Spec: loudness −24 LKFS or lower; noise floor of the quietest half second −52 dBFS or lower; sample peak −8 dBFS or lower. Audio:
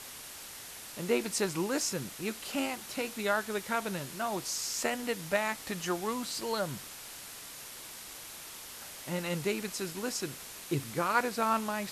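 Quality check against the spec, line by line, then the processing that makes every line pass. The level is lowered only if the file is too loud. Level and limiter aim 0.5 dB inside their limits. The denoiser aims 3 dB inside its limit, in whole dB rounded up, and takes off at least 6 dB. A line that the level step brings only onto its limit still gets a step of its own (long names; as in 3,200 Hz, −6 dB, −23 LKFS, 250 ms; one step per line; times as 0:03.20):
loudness −34.0 LKFS: in spec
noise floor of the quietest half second −46 dBFS: out of spec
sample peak −13.0 dBFS: in spec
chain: broadband denoise 9 dB, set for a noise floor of −46 dBFS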